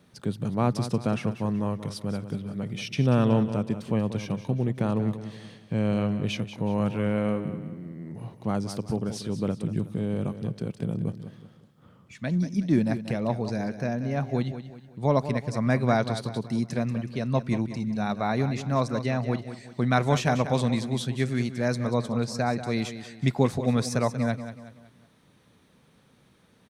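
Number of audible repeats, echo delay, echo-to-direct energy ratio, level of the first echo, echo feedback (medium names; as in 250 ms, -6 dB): 3, 186 ms, -10.5 dB, -11.5 dB, 40%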